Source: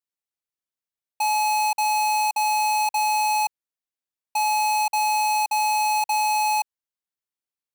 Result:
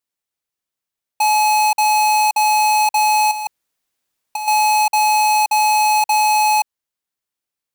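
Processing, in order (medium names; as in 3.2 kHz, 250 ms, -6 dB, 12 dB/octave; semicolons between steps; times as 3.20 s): 3.31–4.48 s: compressor with a negative ratio -28 dBFS, ratio -0.5; trim +7 dB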